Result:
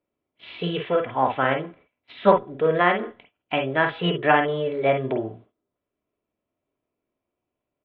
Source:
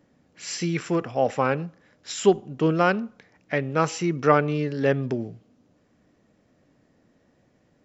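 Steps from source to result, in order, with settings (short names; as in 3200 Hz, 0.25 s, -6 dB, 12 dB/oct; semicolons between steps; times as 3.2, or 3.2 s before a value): steep low-pass 3000 Hz 72 dB/oct; gate -49 dBFS, range -22 dB; comb 3 ms, depth 43%; formant shift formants +5 st; on a send: reverb, pre-delay 45 ms, DRR 5 dB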